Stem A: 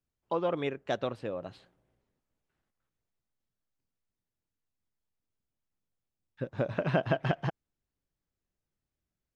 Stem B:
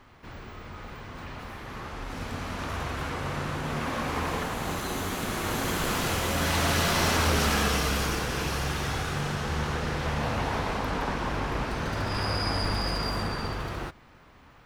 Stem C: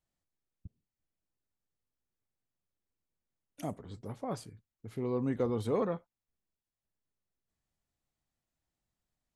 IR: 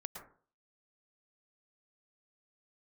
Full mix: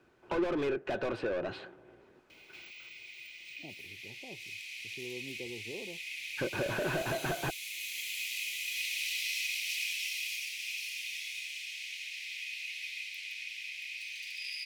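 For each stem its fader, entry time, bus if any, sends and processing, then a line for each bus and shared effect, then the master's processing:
-10.5 dB, 0.00 s, no send, overdrive pedal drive 37 dB, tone 1.3 kHz, clips at -12 dBFS
-1.0 dB, 2.30 s, no send, steep high-pass 2.1 kHz 96 dB/octave; treble shelf 12 kHz +8.5 dB
-18.0 dB, 0.00 s, no send, elliptic low-pass 900 Hz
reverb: none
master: treble shelf 4.2 kHz -9.5 dB; small resonant body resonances 360/1500/2500 Hz, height 11 dB, ringing for 45 ms; three bands compressed up and down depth 40%

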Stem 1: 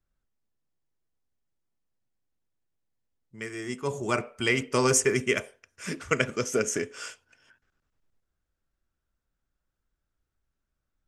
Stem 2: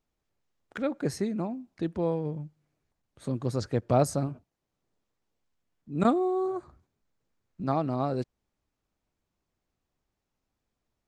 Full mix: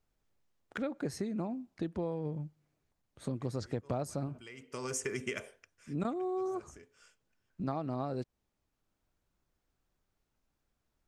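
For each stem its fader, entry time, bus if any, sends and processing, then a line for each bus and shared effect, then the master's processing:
-3.0 dB, 0.00 s, no send, compression, threshold -26 dBFS, peak gain reduction 8 dB; auto duck -21 dB, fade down 0.25 s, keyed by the second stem
-1.0 dB, 0.00 s, no send, none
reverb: none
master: compression 6:1, threshold -32 dBFS, peak gain reduction 12.5 dB

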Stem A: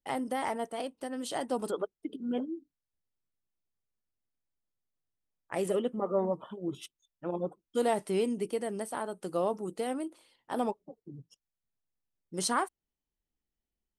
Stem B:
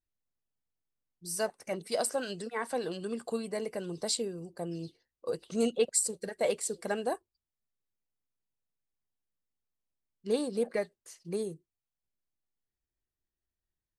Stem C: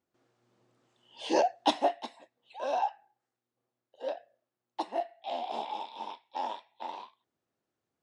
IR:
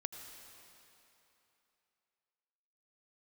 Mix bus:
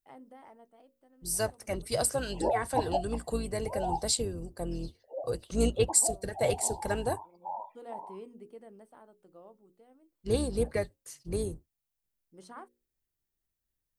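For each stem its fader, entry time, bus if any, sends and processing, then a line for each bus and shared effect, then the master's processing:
-15.0 dB, 0.00 s, no send, low-pass 1.3 kHz 6 dB/octave; hum notches 60/120/180/240/300/360/420/480/540 Hz; auto duck -14 dB, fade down 1.60 s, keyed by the second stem
+0.5 dB, 0.00 s, no send, octave divider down 2 oct, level +1 dB
-3.0 dB, 1.10 s, no send, spectral gate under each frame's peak -15 dB strong; steep low-pass 2.4 kHz 48 dB/octave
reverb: none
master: treble shelf 9.9 kHz +10.5 dB

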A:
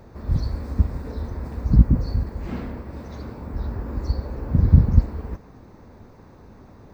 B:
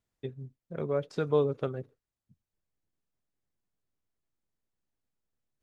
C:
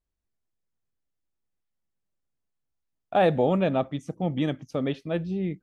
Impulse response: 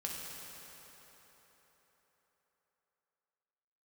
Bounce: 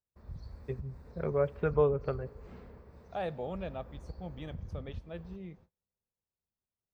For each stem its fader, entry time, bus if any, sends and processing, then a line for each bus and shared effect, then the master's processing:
-19.5 dB, 0.00 s, send -19.5 dB, compression 4:1, threshold -20 dBFS, peak gain reduction 11.5 dB
+1.5 dB, 0.45 s, send -23.5 dB, steep low-pass 2.7 kHz; auto duck -7 dB, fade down 1.55 s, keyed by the third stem
-15.0 dB, 0.00 s, send -22.5 dB, none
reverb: on, RT60 4.4 s, pre-delay 3 ms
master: gate -56 dBFS, range -33 dB; peaking EQ 280 Hz -8 dB 0.52 oct

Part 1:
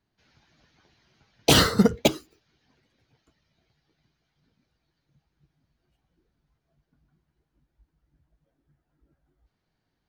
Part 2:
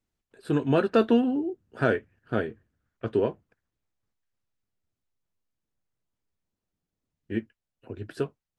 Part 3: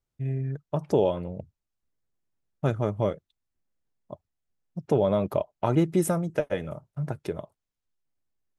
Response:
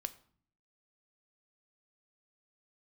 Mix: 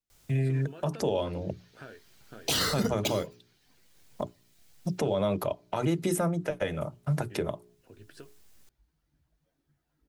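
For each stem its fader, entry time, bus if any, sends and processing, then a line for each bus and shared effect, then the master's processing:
-3.5 dB, 1.00 s, no send, none
-13.0 dB, 0.00 s, no send, compression 5:1, threshold -32 dBFS, peak gain reduction 15 dB
-1.0 dB, 0.10 s, send -17 dB, hum notches 60/120/180/240/300/360/420 Hz; three bands compressed up and down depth 70%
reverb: on, RT60 0.50 s, pre-delay 3 ms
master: treble shelf 2.2 kHz +9 dB; hum notches 60/120/180/240/300/360/420 Hz; peak limiter -17.5 dBFS, peak gain reduction 13.5 dB

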